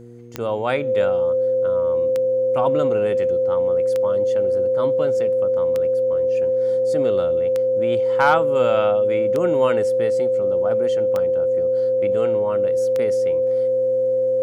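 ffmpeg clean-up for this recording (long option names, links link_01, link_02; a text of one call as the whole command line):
ffmpeg -i in.wav -af "adeclick=threshold=4,bandreject=frequency=119.3:width_type=h:width=4,bandreject=frequency=238.6:width_type=h:width=4,bandreject=frequency=357.9:width_type=h:width=4,bandreject=frequency=477.2:width_type=h:width=4,bandreject=frequency=520:width=30" out.wav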